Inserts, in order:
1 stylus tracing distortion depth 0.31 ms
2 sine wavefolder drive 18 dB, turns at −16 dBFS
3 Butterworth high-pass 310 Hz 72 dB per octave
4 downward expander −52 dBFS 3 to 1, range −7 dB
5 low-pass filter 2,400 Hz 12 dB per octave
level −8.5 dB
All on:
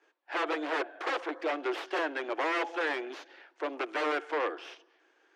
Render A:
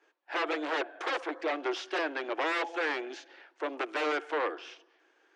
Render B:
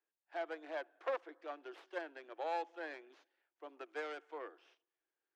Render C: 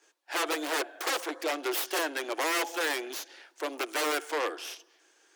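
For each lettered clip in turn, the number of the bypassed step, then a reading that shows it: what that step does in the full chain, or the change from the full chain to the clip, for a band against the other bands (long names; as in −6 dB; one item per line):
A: 1, 8 kHz band +2.5 dB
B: 2, change in crest factor +2.5 dB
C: 5, 8 kHz band +19.5 dB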